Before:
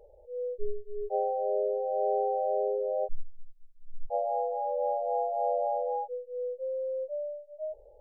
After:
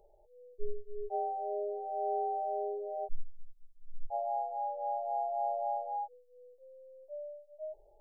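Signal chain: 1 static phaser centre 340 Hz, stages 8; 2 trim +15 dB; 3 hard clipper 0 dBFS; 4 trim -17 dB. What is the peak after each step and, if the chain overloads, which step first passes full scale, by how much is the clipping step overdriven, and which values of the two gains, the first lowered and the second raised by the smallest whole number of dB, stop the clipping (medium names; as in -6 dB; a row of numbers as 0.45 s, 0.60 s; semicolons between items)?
-19.5 dBFS, -4.5 dBFS, -4.5 dBFS, -21.5 dBFS; nothing clips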